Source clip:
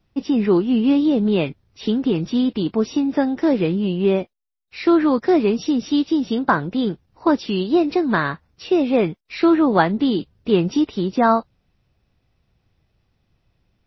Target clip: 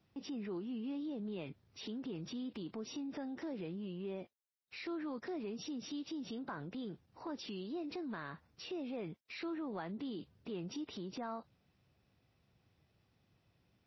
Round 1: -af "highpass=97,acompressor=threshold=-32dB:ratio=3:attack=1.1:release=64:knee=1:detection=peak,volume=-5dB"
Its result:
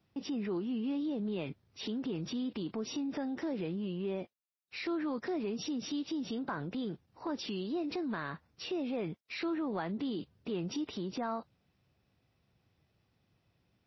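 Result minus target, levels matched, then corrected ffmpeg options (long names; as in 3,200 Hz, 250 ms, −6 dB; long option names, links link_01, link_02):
downward compressor: peak gain reduction −6.5 dB
-af "highpass=97,acompressor=threshold=-41.5dB:ratio=3:attack=1.1:release=64:knee=1:detection=peak,volume=-5dB"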